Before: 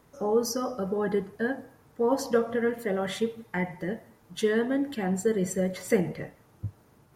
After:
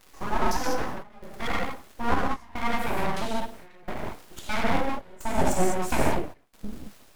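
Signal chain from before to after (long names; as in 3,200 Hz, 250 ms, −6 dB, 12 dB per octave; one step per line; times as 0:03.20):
surface crackle 140 per second −39 dBFS
gate pattern "xxxx.xxx....x" 147 BPM −24 dB
reverb whose tail is shaped and stops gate 230 ms flat, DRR −4.5 dB
full-wave rectification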